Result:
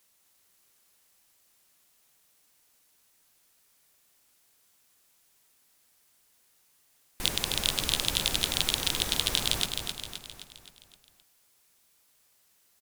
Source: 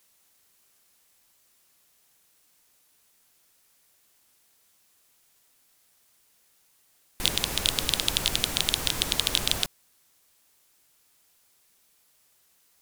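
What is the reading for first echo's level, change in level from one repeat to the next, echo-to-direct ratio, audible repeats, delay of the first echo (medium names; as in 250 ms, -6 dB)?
-6.0 dB, -5.5 dB, -4.5 dB, 6, 261 ms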